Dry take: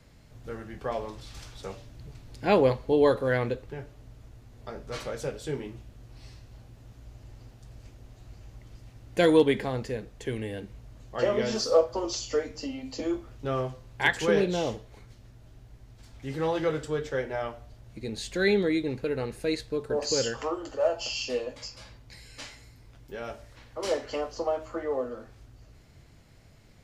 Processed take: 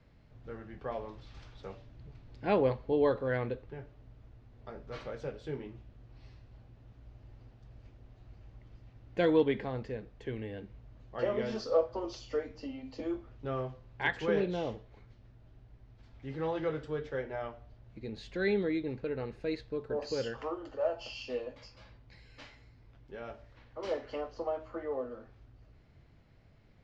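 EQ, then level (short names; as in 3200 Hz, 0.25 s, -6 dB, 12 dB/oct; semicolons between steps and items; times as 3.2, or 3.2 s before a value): air absorption 210 m; -5.5 dB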